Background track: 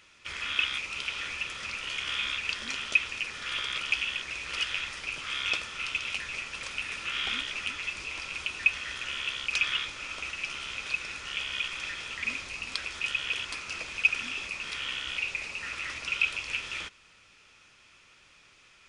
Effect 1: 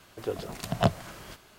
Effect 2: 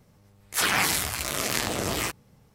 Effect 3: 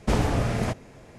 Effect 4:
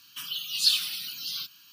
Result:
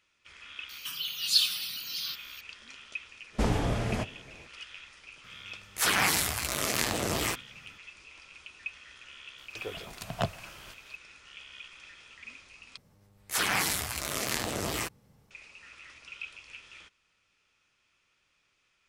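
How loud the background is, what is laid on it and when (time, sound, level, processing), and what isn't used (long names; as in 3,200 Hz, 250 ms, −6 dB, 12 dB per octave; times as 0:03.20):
background track −14.5 dB
0:00.69: mix in 4 −1.5 dB + one half of a high-frequency compander encoder only
0:03.31: mix in 3, fades 0.05 s + flanger 1.8 Hz, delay 1.9 ms, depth 5.5 ms, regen −70%
0:05.24: mix in 2 −2 dB
0:09.38: mix in 1 −3.5 dB + parametric band 240 Hz −6.5 dB 2.6 octaves
0:12.77: overwrite with 2 −4.5 dB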